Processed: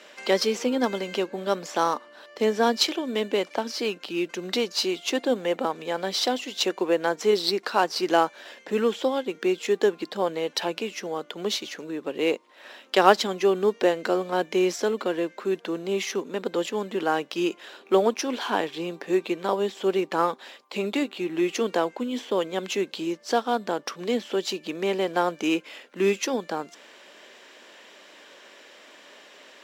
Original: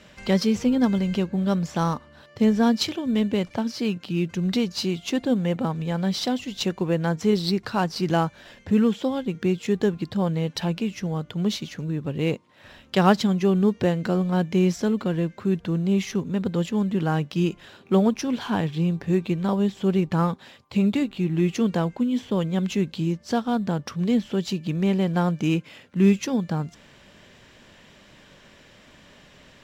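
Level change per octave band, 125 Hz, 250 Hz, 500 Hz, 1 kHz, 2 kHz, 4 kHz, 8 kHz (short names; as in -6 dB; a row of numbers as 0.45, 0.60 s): -17.5, -7.5, +3.0, +3.5, +3.5, +3.5, +3.5 dB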